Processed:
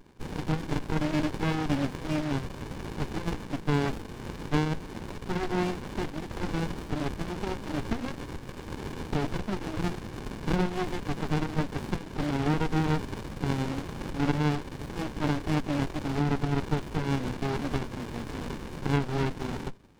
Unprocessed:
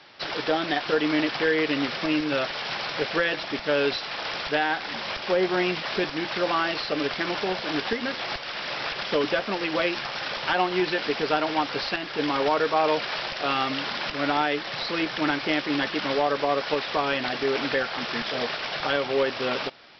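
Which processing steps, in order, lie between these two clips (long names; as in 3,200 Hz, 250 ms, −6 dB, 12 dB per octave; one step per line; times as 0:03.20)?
notch comb filter 170 Hz
windowed peak hold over 65 samples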